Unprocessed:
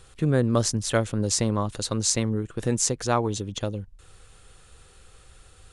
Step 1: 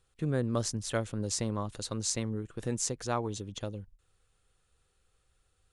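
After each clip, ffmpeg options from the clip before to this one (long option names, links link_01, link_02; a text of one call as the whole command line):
ffmpeg -i in.wav -af "agate=range=-12dB:threshold=-44dB:ratio=16:detection=peak,volume=-8.5dB" out.wav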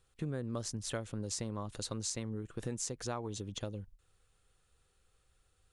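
ffmpeg -i in.wav -af "acompressor=threshold=-35dB:ratio=4" out.wav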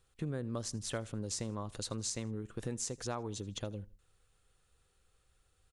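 ffmpeg -i in.wav -af "aecho=1:1:80|160:0.0708|0.0255" out.wav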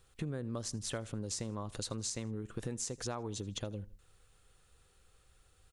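ffmpeg -i in.wav -af "acompressor=threshold=-46dB:ratio=2,volume=6dB" out.wav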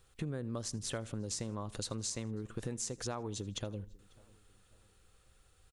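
ffmpeg -i in.wav -filter_complex "[0:a]asplit=2[link_01][link_02];[link_02]adelay=545,lowpass=frequency=2700:poles=1,volume=-24dB,asplit=2[link_03][link_04];[link_04]adelay=545,lowpass=frequency=2700:poles=1,volume=0.43,asplit=2[link_05][link_06];[link_06]adelay=545,lowpass=frequency=2700:poles=1,volume=0.43[link_07];[link_01][link_03][link_05][link_07]amix=inputs=4:normalize=0" out.wav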